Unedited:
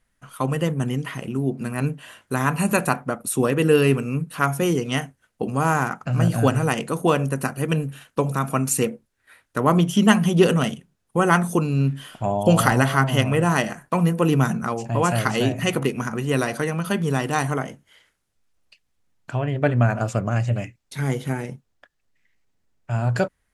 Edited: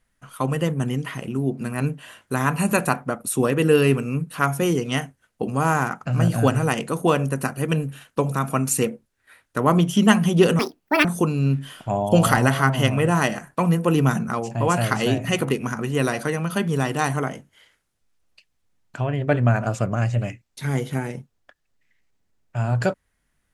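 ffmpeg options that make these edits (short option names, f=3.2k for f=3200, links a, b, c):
-filter_complex "[0:a]asplit=3[a][b][c];[a]atrim=end=10.594[d];[b]atrim=start=10.59:end=11.39,asetpts=PTS-STARTPTS,asetrate=77175,aresample=44100[e];[c]atrim=start=11.386[f];[d][e]acrossfade=d=0.004:c1=hsin:c2=hsin[g];[g][f]acrossfade=d=0.004:c1=hsin:c2=hsin"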